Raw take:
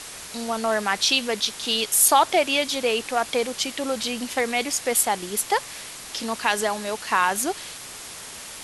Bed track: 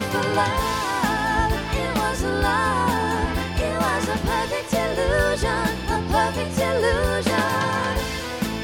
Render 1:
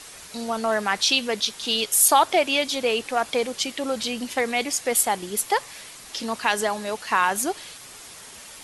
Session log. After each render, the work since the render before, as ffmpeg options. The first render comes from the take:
-af "afftdn=nr=6:nf=-39"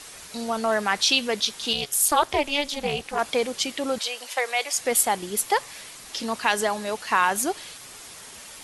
-filter_complex "[0:a]asettb=1/sr,asplit=3[a][b][c];[a]atrim=end=1.734[d];[b]atrim=start=1.73:end=3.19,asetpts=PTS-STARTPTS,afade=t=in:d=0.004:c=qsin,afade=t=out:st=1.456:d=0.004:c=qsin,tremolo=f=290:d=0.974[e];[c]atrim=start=3.186[f];[d][e]acrossfade=d=0.004:c1=hsin:c2=qsin[g];[g][f]acrossfade=d=0.004:c1=qsin:c2=hsin,asettb=1/sr,asplit=3[h][i][j];[h]atrim=end=3.984[k];[i]atrim=start=3.98:end=4.78,asetpts=PTS-STARTPTS,afade=t=in:d=0.004:c=qsin,afade=t=out:st=0.796:d=0.004:c=qsin,highpass=f=510:w=0.5412,highpass=f=510:w=1.3066[l];[j]atrim=start=4.776[m];[k][l]acrossfade=d=0.004:c1=hsin:c2=qsin[n];[n][m]acrossfade=d=0.004:c1=qsin:c2=hsin"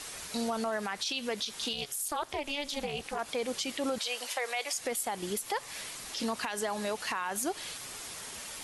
-af "acompressor=threshold=-28dB:ratio=2.5,alimiter=limit=-23dB:level=0:latency=1:release=77"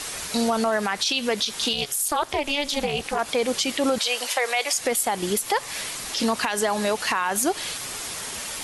-af "volume=10dB"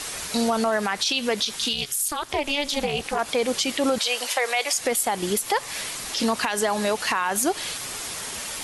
-filter_complex "[0:a]asettb=1/sr,asplit=3[a][b][c];[a]atrim=end=1.564[d];[b]atrim=start=1.56:end=2.3,asetpts=PTS-STARTPTS,afade=t=in:d=0.004:c=qsin,afade=t=out:st=0.736:d=0.004:c=qsin,equalizer=f=640:t=o:w=1.6:g=-9[e];[c]atrim=start=2.296[f];[d][e]acrossfade=d=0.004:c1=hsin:c2=qsin[g];[g][f]acrossfade=d=0.004:c1=qsin:c2=hsin"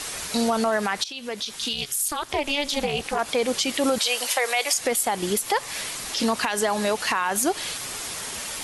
-filter_complex "[0:a]asettb=1/sr,asplit=3[a][b][c];[a]atrim=end=3.744[d];[b]atrim=start=3.74:end=4.74,asetpts=PTS-STARTPTS,afade=t=in:d=0.004:c=qsin,afade=t=out:st=0.996:d=0.004:c=qsin,highshelf=f=9.9k:g=8[e];[c]atrim=start=4.736[f];[d][e]acrossfade=d=0.004:c1=hsin:c2=qsin[g];[g][f]acrossfade=d=0.004:c1=qsin:c2=hsin,asplit=2[h][i];[h]atrim=end=1.04,asetpts=PTS-STARTPTS,afade=t=out:st=1.036:d=0.004:c=hsin:silence=0.188365[j];[i]atrim=start=1.04,asetpts=PTS-STARTPTS,afade=t=in:d=0.93:silence=0.188365[k];[j][k]concat=n=2:v=0:a=1"

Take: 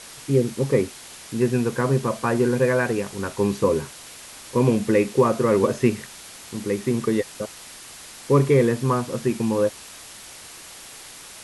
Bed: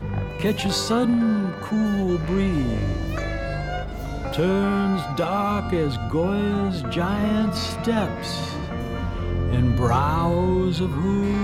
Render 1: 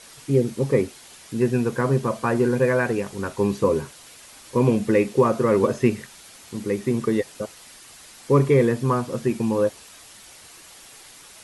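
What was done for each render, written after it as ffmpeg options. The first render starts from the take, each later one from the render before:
-af "afftdn=nr=6:nf=-42"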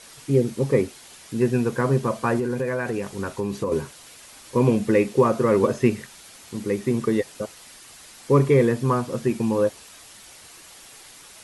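-filter_complex "[0:a]asettb=1/sr,asplit=3[a][b][c];[a]atrim=end=2.394[d];[b]atrim=start=2.39:end=3.72,asetpts=PTS-STARTPTS,afade=t=in:d=0.004:c=qsin,afade=t=out:st=1.326:d=0.004:c=qsin,acompressor=threshold=-22dB:ratio=4:attack=3.2:release=140:knee=1:detection=peak[e];[c]atrim=start=3.716[f];[d][e]acrossfade=d=0.004:c1=hsin:c2=qsin[g];[g][f]acrossfade=d=0.004:c1=qsin:c2=hsin"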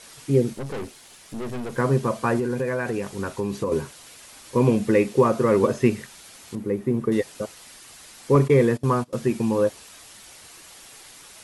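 -filter_complex "[0:a]asettb=1/sr,asplit=3[a][b][c];[a]atrim=end=0.534[d];[b]atrim=start=0.53:end=1.78,asetpts=PTS-STARTPTS,afade=t=in:d=0.004:c=qsin,afade=t=out:st=1.246:d=0.004:c=qsin,aeval=exprs='(tanh(28.2*val(0)+0.55)-tanh(0.55))/28.2':c=same[e];[c]atrim=start=1.776[f];[d][e]acrossfade=d=0.004:c1=hsin:c2=qsin[g];[g][f]acrossfade=d=0.004:c1=qsin:c2=hsin,asettb=1/sr,asplit=3[h][i][j];[h]atrim=end=6.554[k];[i]atrim=start=6.55:end=7.12,asetpts=PTS-STARTPTS,afade=t=in:d=0.004:c=qsin,afade=t=out:st=0.566:d=0.004:c=qsin,equalizer=f=5.8k:t=o:w=2.9:g=-15[l];[j]atrim=start=7.116[m];[k][l]acrossfade=d=0.004:c1=hsin:c2=qsin[n];[n][m]acrossfade=d=0.004:c1=qsin:c2=hsin,asettb=1/sr,asplit=3[o][p][q];[o]atrim=end=8.354[r];[p]atrim=start=8.35:end=9.13,asetpts=PTS-STARTPTS,afade=t=in:d=0.004:c=qsin,afade=t=out:st=0.776:d=0.004:c=qsin,agate=range=-21dB:threshold=-27dB:ratio=16:release=100:detection=peak[s];[q]atrim=start=9.126[t];[r][s]acrossfade=d=0.004:c1=hsin:c2=qsin[u];[u][t]acrossfade=d=0.004:c1=qsin:c2=hsin"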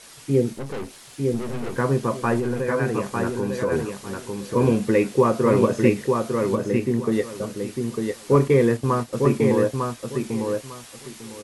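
-filter_complex "[0:a]asplit=2[a][b];[b]adelay=26,volume=-13dB[c];[a][c]amix=inputs=2:normalize=0,aecho=1:1:901|1802|2703:0.631|0.133|0.0278"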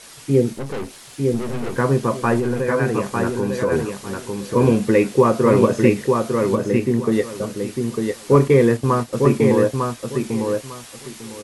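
-af "volume=3.5dB,alimiter=limit=-2dB:level=0:latency=1"

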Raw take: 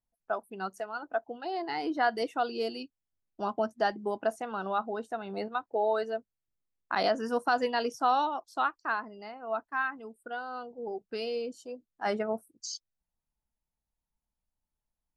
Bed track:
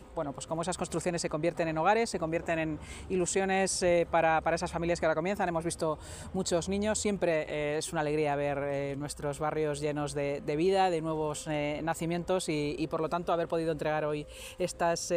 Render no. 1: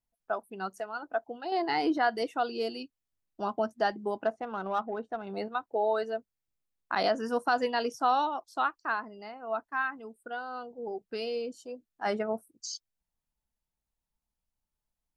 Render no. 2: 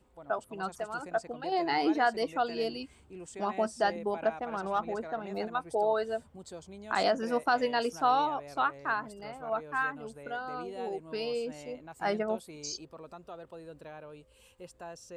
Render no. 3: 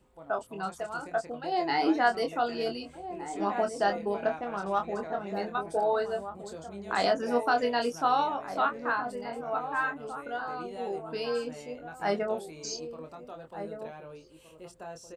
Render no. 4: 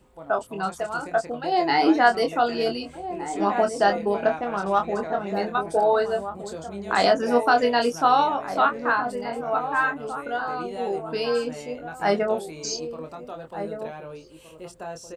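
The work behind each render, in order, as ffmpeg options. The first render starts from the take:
-filter_complex "[0:a]asettb=1/sr,asplit=3[a][b][c];[a]atrim=end=4.264[d];[b]atrim=start=4.26:end=5.27,asetpts=PTS-STARTPTS,afade=t=in:d=0.004:c=qsin,afade=t=out:st=1.006:d=0.004:c=qsin,adynamicsmooth=sensitivity=2.5:basefreq=2.1k[e];[c]atrim=start=5.266[f];[d][e]acrossfade=d=0.004:c1=hsin:c2=qsin[g];[g][f]acrossfade=d=0.004:c1=qsin:c2=hsin,asplit=3[h][i][j];[h]atrim=end=1.522[k];[i]atrim=start=1.518:end=1.982,asetpts=PTS-STARTPTS,volume=5dB[l];[j]atrim=start=1.978[m];[k][l]acrossfade=d=0.004:c1=hsin:c2=hsin[n];[n][m]acrossfade=d=0.004:c1=hsin:c2=hsin"
-filter_complex "[1:a]volume=-16dB[a];[0:a][a]amix=inputs=2:normalize=0"
-filter_complex "[0:a]asplit=2[a][b];[b]adelay=25,volume=-5.5dB[c];[a][c]amix=inputs=2:normalize=0,asplit=2[d][e];[e]adelay=1516,volume=-9dB,highshelf=f=4k:g=-34.1[f];[d][f]amix=inputs=2:normalize=0"
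-af "volume=7dB"

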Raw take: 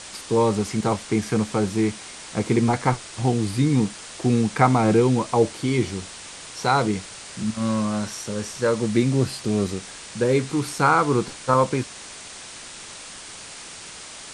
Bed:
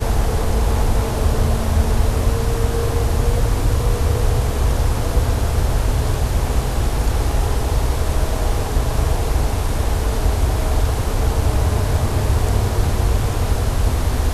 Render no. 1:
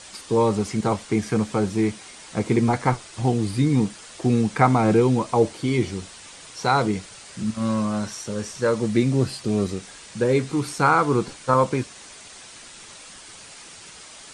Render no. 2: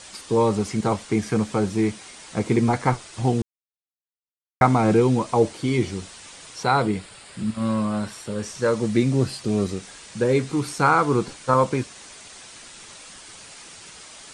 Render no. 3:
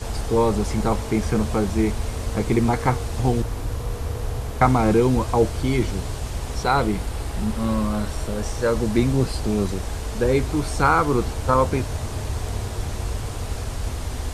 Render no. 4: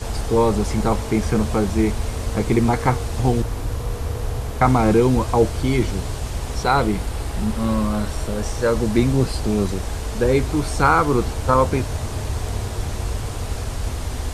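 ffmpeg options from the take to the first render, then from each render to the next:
-af "afftdn=nr=6:nf=-40"
-filter_complex "[0:a]asettb=1/sr,asplit=3[a][b][c];[a]atrim=end=6.634[d];[b]atrim=start=6.63:end=8.43,asetpts=PTS-STARTPTS,afade=t=in:d=0.004:c=qsin,afade=t=out:st=1.796:d=0.004:c=qsin,equalizer=f=6.1k:w=3.7:g=-13[e];[c]atrim=start=8.426[f];[d][e]acrossfade=d=0.004:c1=hsin:c2=qsin[g];[g][f]acrossfade=d=0.004:c1=qsin:c2=hsin,asplit=3[h][i][j];[h]atrim=end=3.42,asetpts=PTS-STARTPTS,afade=t=out:st=3.416:d=0.004:c=hsin[k];[i]atrim=start=3.42:end=4.61,asetpts=PTS-STARTPTS,volume=0[l];[j]atrim=start=4.61,asetpts=PTS-STARTPTS,afade=t=in:d=0.004:c=hsin[m];[k][l][m]concat=n=3:v=0:a=1"
-filter_complex "[1:a]volume=-10dB[a];[0:a][a]amix=inputs=2:normalize=0"
-af "volume=2dB,alimiter=limit=-2dB:level=0:latency=1"

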